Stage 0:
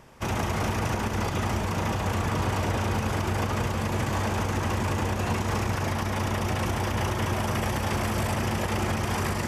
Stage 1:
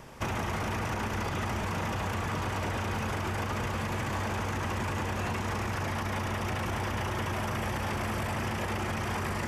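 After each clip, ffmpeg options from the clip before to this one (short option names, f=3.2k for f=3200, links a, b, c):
-filter_complex "[0:a]alimiter=limit=-21.5dB:level=0:latency=1:release=14,acrossover=split=1100|2800[a][b][c];[a]acompressor=threshold=-36dB:ratio=4[d];[b]acompressor=threshold=-41dB:ratio=4[e];[c]acompressor=threshold=-51dB:ratio=4[f];[d][e][f]amix=inputs=3:normalize=0,volume=4dB"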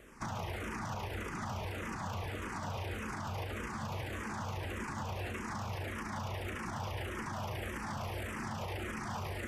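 -filter_complex "[0:a]asplit=2[a][b];[b]afreqshift=-1.7[c];[a][c]amix=inputs=2:normalize=1,volume=-4.5dB"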